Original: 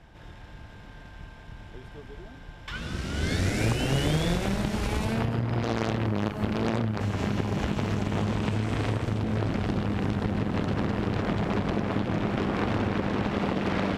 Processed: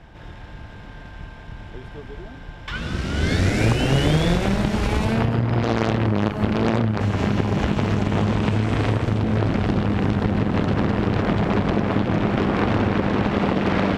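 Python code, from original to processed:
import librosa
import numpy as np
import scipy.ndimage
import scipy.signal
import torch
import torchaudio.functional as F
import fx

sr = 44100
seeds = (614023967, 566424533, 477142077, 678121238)

y = fx.high_shelf(x, sr, hz=6900.0, db=-9.0)
y = F.gain(torch.from_numpy(y), 7.0).numpy()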